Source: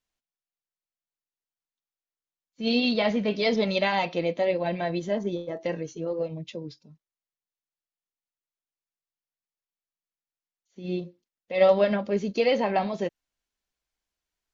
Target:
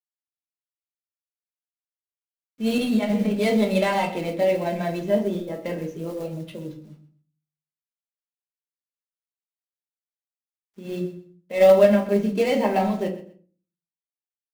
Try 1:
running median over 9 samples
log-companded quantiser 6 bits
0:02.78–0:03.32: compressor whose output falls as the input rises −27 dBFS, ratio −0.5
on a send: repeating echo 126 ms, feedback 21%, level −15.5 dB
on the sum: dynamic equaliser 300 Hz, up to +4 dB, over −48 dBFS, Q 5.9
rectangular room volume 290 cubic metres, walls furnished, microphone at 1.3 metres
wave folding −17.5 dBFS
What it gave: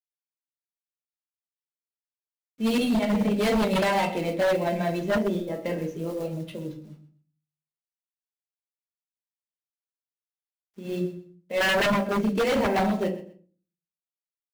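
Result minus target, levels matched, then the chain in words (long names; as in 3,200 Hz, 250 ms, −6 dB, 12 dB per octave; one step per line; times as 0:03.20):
wave folding: distortion +33 dB
running median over 9 samples
log-companded quantiser 6 bits
0:02.78–0:03.32: compressor whose output falls as the input rises −27 dBFS, ratio −0.5
on a send: repeating echo 126 ms, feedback 21%, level −15.5 dB
on the sum: dynamic equaliser 300 Hz, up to +4 dB, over −48 dBFS, Q 5.9
rectangular room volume 290 cubic metres, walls furnished, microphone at 1.3 metres
wave folding −6 dBFS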